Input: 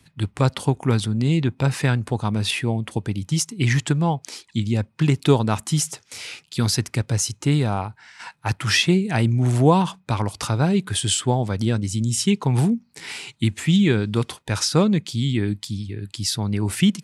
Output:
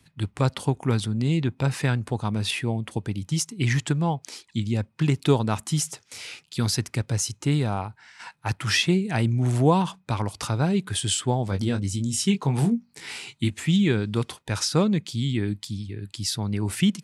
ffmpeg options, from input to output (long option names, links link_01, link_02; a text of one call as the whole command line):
ffmpeg -i in.wav -filter_complex "[0:a]asettb=1/sr,asplit=3[link_01][link_02][link_03];[link_01]atrim=end=11.454[link_04];[link_02]atrim=start=11.45:end=13.5,asetpts=PTS-STARTPTS,afade=type=in:duration=0.004:curve=qsin,afade=type=out:start_time=2.046:duration=0.004:curve=qsin,asplit=2[link_05][link_06];[link_06]adelay=21,volume=-7.5dB[link_07];[link_05][link_07]amix=inputs=2:normalize=0,atrim=end_sample=90405[link_08];[link_03]atrim=start=13.496[link_09];[link_04][link_08]acrossfade=duration=0.004:curve1=hsin:curve2=qsin[link_10];[link_10][link_09]acrossfade=duration=0.004:curve1=qsin:curve2=hsin,volume=-3.5dB" out.wav